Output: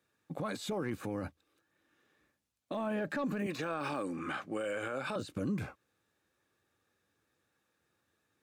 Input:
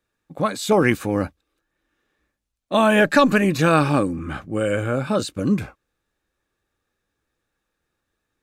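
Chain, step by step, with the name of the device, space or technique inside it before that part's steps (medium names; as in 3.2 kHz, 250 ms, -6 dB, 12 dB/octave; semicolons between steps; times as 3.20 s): 3.46–5.16 s: frequency weighting A; podcast mastering chain (high-pass 82 Hz 24 dB/octave; de-esser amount 95%; compression 3:1, threshold -29 dBFS, peak gain reduction 11.5 dB; peak limiter -27 dBFS, peak gain reduction 11 dB; MP3 128 kbps 44.1 kHz)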